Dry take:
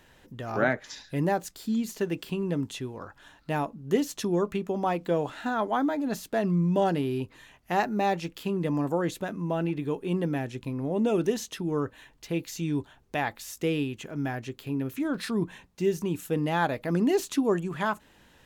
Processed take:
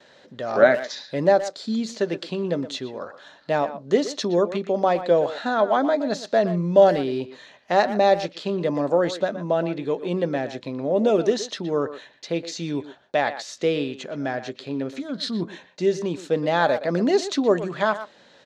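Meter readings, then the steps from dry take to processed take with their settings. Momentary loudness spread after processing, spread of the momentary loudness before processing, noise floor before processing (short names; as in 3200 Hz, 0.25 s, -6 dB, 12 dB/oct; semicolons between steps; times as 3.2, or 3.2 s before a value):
12 LU, 9 LU, -59 dBFS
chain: spectral gain 15–15.4, 280–2800 Hz -11 dB; gate with hold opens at -51 dBFS; speaker cabinet 220–6600 Hz, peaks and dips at 310 Hz -4 dB, 580 Hz +9 dB, 930 Hz -3 dB, 2700 Hz -5 dB, 4100 Hz +8 dB; speakerphone echo 0.12 s, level -12 dB; gain +5.5 dB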